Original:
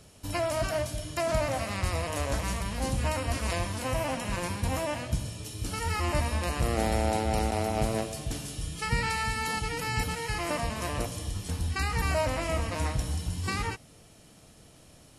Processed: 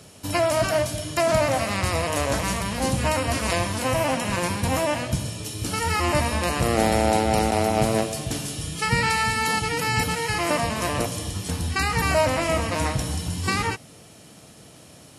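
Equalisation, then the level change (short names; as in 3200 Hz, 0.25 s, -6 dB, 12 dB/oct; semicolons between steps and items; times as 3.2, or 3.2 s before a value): HPF 100 Hz 12 dB/oct; +8.0 dB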